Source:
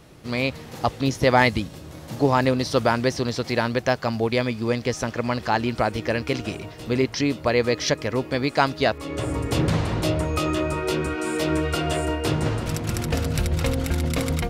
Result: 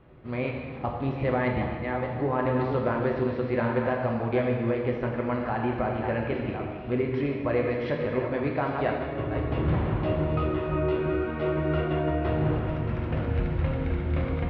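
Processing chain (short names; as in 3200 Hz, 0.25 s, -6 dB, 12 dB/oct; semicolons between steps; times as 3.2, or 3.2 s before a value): reverse delay 0.414 s, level -9 dB; Bessel low-pass 1800 Hz, order 6; limiter -12.5 dBFS, peak gain reduction 7.5 dB; non-linear reverb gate 0.46 s falling, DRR 0 dB; gain -6 dB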